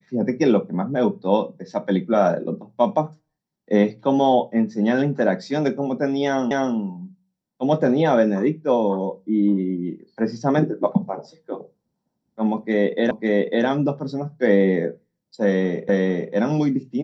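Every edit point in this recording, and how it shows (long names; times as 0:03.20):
0:06.51: the same again, the last 0.25 s
0:13.11: the same again, the last 0.55 s
0:15.89: the same again, the last 0.45 s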